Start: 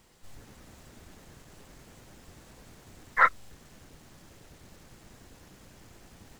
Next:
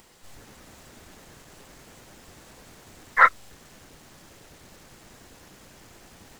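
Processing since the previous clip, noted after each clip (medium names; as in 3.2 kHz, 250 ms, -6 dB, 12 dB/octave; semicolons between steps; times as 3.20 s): bass shelf 250 Hz -7 dB; upward compressor, threshold -57 dBFS; trim +5.5 dB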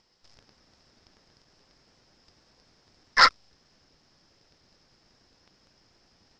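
treble shelf 4.1 kHz -10 dB; waveshaping leveller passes 3; resonant low-pass 5.2 kHz, resonance Q 9.7; trim -8.5 dB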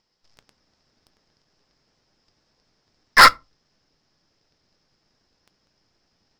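waveshaping leveller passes 3; reverberation RT60 0.25 s, pre-delay 5 ms, DRR 15 dB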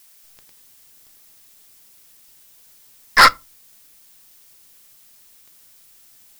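added noise blue -51 dBFS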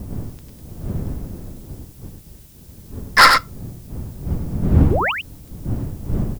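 wind noise 150 Hz -25 dBFS; painted sound rise, 4.90–5.12 s, 300–3200 Hz -20 dBFS; delay 96 ms -5.5 dB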